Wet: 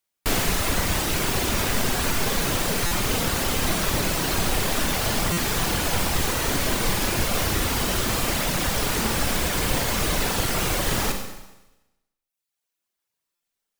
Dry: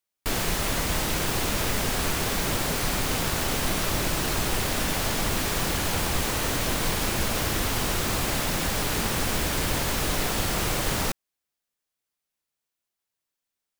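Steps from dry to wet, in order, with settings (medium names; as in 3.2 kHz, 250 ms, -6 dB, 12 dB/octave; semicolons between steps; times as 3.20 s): reverb removal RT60 1.3 s; Schroeder reverb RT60 1 s, combs from 32 ms, DRR 3.5 dB; buffer glitch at 2.86/5.32/13.35 s, samples 256, times 8; trim +4 dB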